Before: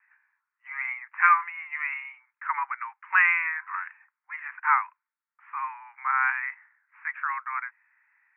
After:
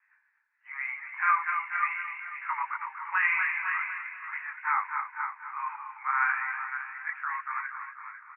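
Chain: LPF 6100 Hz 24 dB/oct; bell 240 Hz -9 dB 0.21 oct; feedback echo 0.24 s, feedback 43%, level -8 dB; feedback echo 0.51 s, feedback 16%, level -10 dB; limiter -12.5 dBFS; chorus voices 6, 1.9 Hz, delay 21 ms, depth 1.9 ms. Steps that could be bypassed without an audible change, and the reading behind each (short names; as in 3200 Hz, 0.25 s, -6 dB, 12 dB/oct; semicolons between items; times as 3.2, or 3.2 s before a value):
LPF 6100 Hz: input band ends at 2900 Hz; bell 240 Hz: input band starts at 720 Hz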